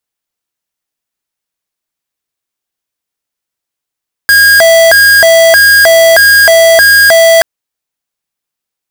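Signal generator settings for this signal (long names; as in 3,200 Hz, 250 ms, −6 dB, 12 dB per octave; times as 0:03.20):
siren hi-lo 660–1,630 Hz 1.6 per second square −4 dBFS 3.13 s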